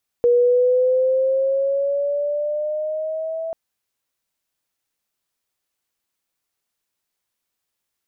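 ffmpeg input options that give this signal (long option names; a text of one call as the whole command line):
ffmpeg -f lavfi -i "aevalsrc='pow(10,(-11.5-12.5*t/3.29)/20)*sin(2*PI*479*3.29/(5.5*log(2)/12)*(exp(5.5*log(2)/12*t/3.29)-1))':duration=3.29:sample_rate=44100" out.wav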